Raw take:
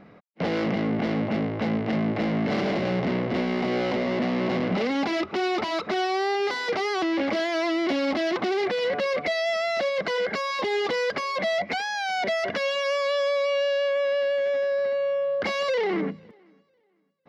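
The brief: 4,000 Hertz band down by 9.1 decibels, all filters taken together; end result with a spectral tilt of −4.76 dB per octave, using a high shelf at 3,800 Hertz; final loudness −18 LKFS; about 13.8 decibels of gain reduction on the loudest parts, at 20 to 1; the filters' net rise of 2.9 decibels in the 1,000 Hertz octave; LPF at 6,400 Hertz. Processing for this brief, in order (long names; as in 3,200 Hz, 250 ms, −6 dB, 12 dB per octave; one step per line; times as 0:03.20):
low-pass filter 6,400 Hz
parametric band 1,000 Hz +5 dB
high-shelf EQ 3,800 Hz −8.5 dB
parametric band 4,000 Hz −7.5 dB
downward compressor 20 to 1, threshold −35 dBFS
level +20.5 dB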